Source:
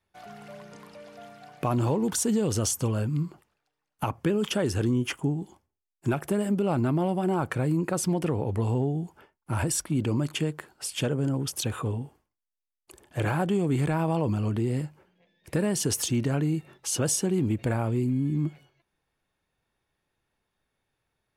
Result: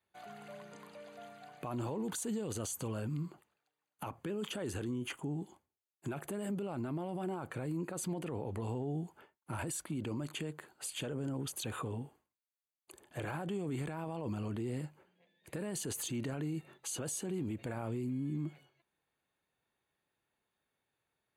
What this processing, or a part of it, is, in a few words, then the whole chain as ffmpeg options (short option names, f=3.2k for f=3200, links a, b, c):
PA system with an anti-feedback notch: -af "highpass=f=170:p=1,asuperstop=centerf=5400:order=4:qfactor=5.2,alimiter=level_in=2dB:limit=-24dB:level=0:latency=1:release=33,volume=-2dB,volume=-4.5dB"